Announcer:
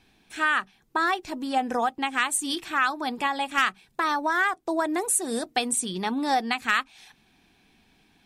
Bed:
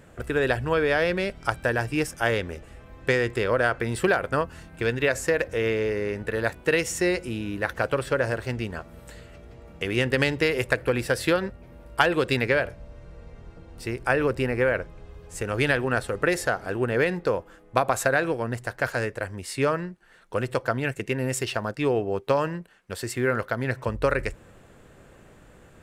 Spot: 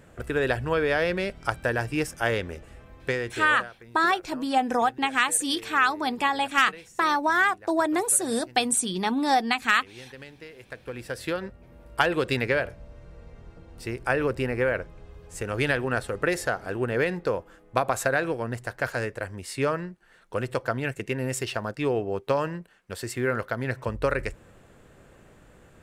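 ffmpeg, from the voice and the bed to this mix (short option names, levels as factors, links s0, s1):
-filter_complex "[0:a]adelay=3000,volume=1.26[s0];[1:a]volume=7.94,afade=t=out:st=2.79:d=0.92:silence=0.1,afade=t=in:st=10.62:d=1.37:silence=0.105925[s1];[s0][s1]amix=inputs=2:normalize=0"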